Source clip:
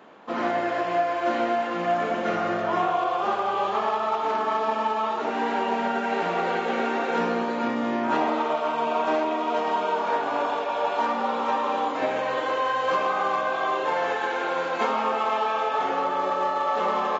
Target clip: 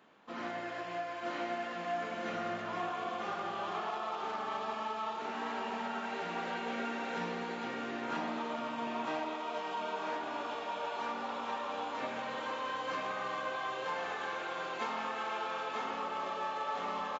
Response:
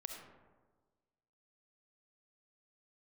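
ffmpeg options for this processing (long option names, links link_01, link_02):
-af "equalizer=frequency=550:width=0.43:gain=-8,aecho=1:1:946:0.668,volume=-8dB"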